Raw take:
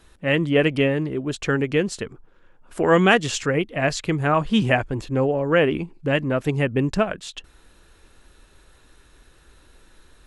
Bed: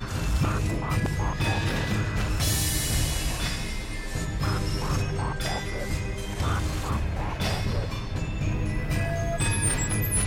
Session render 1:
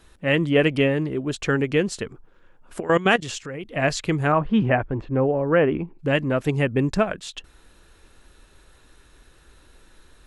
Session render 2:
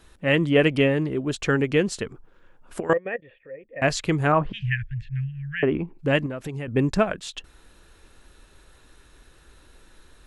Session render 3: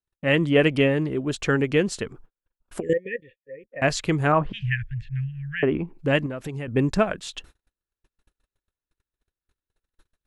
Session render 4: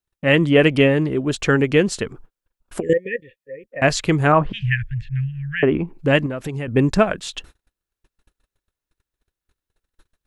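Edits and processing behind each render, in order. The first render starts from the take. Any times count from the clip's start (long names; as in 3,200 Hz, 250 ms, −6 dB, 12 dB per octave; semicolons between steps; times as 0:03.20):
0:02.80–0:03.65: output level in coarse steps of 16 dB; 0:04.32–0:05.99: low-pass filter 1,800 Hz; 0:06.68–0:07.13: notch filter 2,900 Hz, Q 11
0:02.93–0:03.82: formant resonators in series e; 0:04.52–0:05.63: Chebyshev band-stop filter 140–1,700 Hz, order 5; 0:06.26–0:06.68: downward compressor 5 to 1, threshold −29 dBFS
noise gate −45 dBFS, range −42 dB; 0:02.81–0:03.71: time-frequency box erased 550–1,700 Hz
level +5 dB; brickwall limiter −3 dBFS, peak gain reduction 1 dB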